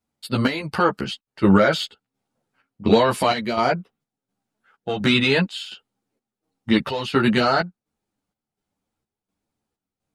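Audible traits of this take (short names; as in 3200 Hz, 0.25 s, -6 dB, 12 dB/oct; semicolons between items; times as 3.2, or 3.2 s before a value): chopped level 1.4 Hz, depth 60%, duty 65%; a shimmering, thickened sound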